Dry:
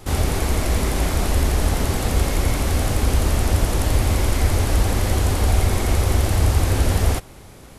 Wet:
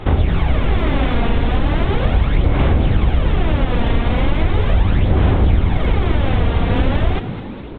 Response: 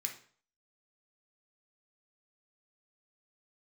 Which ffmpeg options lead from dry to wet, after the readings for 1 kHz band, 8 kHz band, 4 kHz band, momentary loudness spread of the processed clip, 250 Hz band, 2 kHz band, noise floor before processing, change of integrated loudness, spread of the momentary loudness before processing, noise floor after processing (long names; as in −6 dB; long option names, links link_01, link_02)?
+3.0 dB, below −35 dB, −0.5 dB, 3 LU, +5.5 dB, +3.0 dB, −42 dBFS, +3.0 dB, 3 LU, −28 dBFS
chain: -filter_complex "[0:a]aresample=8000,aresample=44100,aphaser=in_gain=1:out_gain=1:delay=4.3:decay=0.54:speed=0.38:type=sinusoidal,acompressor=threshold=-17dB:ratio=3,asplit=2[link_01][link_02];[link_02]asplit=6[link_03][link_04][link_05][link_06][link_07][link_08];[link_03]adelay=211,afreqshift=92,volume=-12.5dB[link_09];[link_04]adelay=422,afreqshift=184,volume=-17.9dB[link_10];[link_05]adelay=633,afreqshift=276,volume=-23.2dB[link_11];[link_06]adelay=844,afreqshift=368,volume=-28.6dB[link_12];[link_07]adelay=1055,afreqshift=460,volume=-33.9dB[link_13];[link_08]adelay=1266,afreqshift=552,volume=-39.3dB[link_14];[link_09][link_10][link_11][link_12][link_13][link_14]amix=inputs=6:normalize=0[link_15];[link_01][link_15]amix=inputs=2:normalize=0,volume=5dB"